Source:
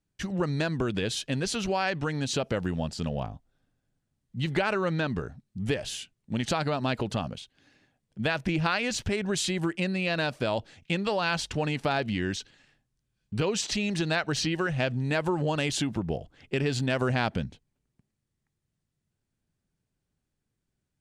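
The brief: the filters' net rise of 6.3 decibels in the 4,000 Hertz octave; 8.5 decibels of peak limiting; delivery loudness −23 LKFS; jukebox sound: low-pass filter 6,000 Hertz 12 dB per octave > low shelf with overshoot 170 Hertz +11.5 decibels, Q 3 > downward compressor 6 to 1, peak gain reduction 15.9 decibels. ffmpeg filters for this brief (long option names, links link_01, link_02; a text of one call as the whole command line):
ffmpeg -i in.wav -af "equalizer=frequency=4000:width_type=o:gain=8.5,alimiter=limit=-17.5dB:level=0:latency=1,lowpass=6000,lowshelf=frequency=170:width_type=q:width=3:gain=11.5,acompressor=threshold=-27dB:ratio=6,volume=8dB" out.wav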